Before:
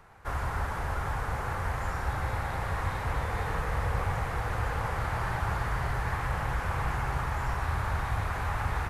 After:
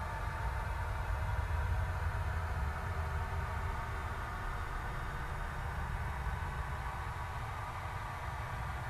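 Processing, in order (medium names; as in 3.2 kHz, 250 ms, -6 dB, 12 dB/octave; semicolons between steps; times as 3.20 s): Paulstretch 45×, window 0.10 s, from 7.90 s; comb of notches 270 Hz; trim -7 dB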